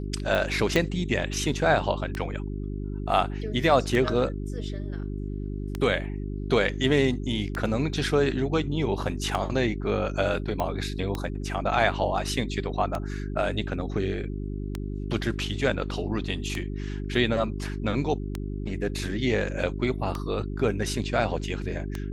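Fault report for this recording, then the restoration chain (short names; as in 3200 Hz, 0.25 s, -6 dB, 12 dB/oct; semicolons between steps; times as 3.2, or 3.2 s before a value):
hum 50 Hz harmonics 8 -32 dBFS
tick 33 1/3 rpm
0.76 pop -10 dBFS
10.6 pop -15 dBFS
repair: de-click; de-hum 50 Hz, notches 8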